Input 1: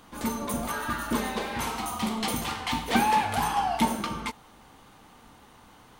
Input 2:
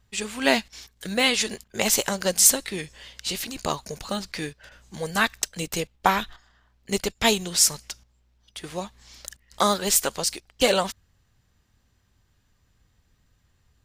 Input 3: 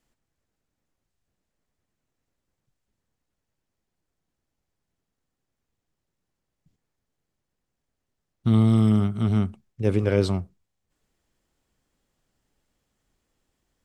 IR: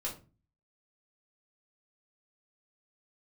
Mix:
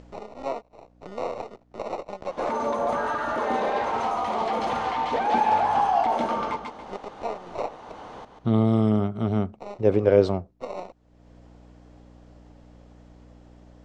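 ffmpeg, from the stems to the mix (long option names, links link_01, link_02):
-filter_complex "[0:a]adelay=2250,volume=1dB,asplit=2[link_01][link_02];[link_02]volume=-12dB[link_03];[1:a]acrusher=samples=27:mix=1:aa=0.000001,aeval=exprs='max(val(0),0)':channel_layout=same,volume=-13.5dB[link_04];[2:a]aeval=exprs='val(0)+0.000891*(sin(2*PI*60*n/s)+sin(2*PI*2*60*n/s)/2+sin(2*PI*3*60*n/s)/3+sin(2*PI*4*60*n/s)/4+sin(2*PI*5*60*n/s)/5)':channel_layout=same,volume=-6dB,asplit=2[link_05][link_06];[link_06]apad=whole_len=610610[link_07];[link_04][link_07]sidechaincompress=threshold=-44dB:ratio=4:attack=50:release=486[link_08];[link_01][link_08]amix=inputs=2:normalize=0,acrossover=split=430|2300[link_09][link_10][link_11];[link_09]acompressor=threshold=-44dB:ratio=4[link_12];[link_10]acompressor=threshold=-29dB:ratio=4[link_13];[link_11]acompressor=threshold=-46dB:ratio=4[link_14];[link_12][link_13][link_14]amix=inputs=3:normalize=0,alimiter=level_in=4dB:limit=-24dB:level=0:latency=1:release=12,volume=-4dB,volume=0dB[link_15];[link_03]aecho=0:1:140|280|420|560:1|0.25|0.0625|0.0156[link_16];[link_05][link_15][link_16]amix=inputs=3:normalize=0,equalizer=frequency=600:width_type=o:width=1.9:gain=14.5,acompressor=mode=upward:threshold=-34dB:ratio=2.5,lowpass=frequency=6600:width=0.5412,lowpass=frequency=6600:width=1.3066"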